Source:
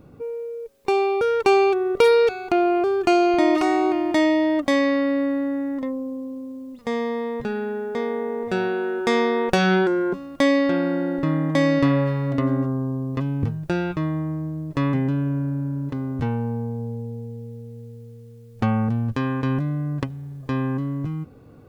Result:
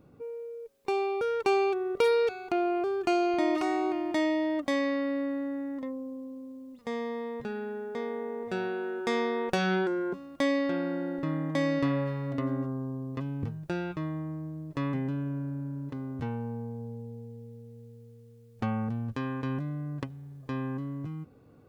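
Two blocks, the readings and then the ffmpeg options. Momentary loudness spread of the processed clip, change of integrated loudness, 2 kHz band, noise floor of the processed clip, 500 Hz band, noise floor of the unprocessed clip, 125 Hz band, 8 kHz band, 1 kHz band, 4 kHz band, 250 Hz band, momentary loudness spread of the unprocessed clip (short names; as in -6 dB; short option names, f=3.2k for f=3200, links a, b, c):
14 LU, -9.0 dB, -8.5 dB, -54 dBFS, -8.5 dB, -45 dBFS, -10.0 dB, -8.5 dB, -8.5 dB, -8.5 dB, -9.0 dB, 14 LU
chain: -af "lowshelf=f=65:g=-7.5,volume=-8.5dB"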